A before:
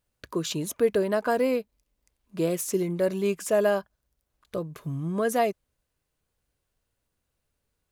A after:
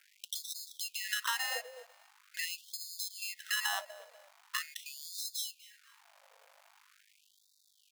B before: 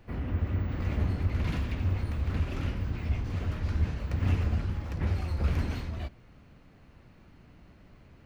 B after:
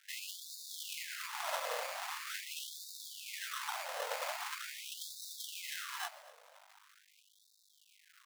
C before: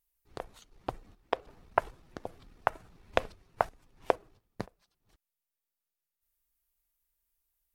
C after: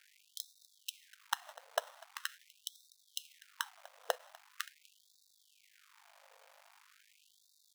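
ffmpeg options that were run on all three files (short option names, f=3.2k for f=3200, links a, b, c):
-af "highpass=66,agate=range=-15dB:threshold=-50dB:ratio=16:detection=peak,lowshelf=f=170:g=-6,bandreject=f=60:t=h:w=6,bandreject=f=120:t=h:w=6,bandreject=f=180:t=h:w=6,acompressor=threshold=-34dB:ratio=20,aresample=11025,asoftclip=type=tanh:threshold=-24.5dB,aresample=44100,aeval=exprs='val(0)+0.000708*(sin(2*PI*50*n/s)+sin(2*PI*2*50*n/s)/2+sin(2*PI*3*50*n/s)/3+sin(2*PI*4*50*n/s)/4+sin(2*PI*5*50*n/s)/5)':c=same,acrusher=samples=19:mix=1:aa=0.000001,tremolo=f=290:d=0.333,acrusher=bits=10:mix=0:aa=0.000001,aecho=1:1:247|494:0.0841|0.0261,afftfilt=real='re*gte(b*sr/1024,460*pow(3600/460,0.5+0.5*sin(2*PI*0.43*pts/sr)))':imag='im*gte(b*sr/1024,460*pow(3600/460,0.5+0.5*sin(2*PI*0.43*pts/sr)))':win_size=1024:overlap=0.75,volume=12dB"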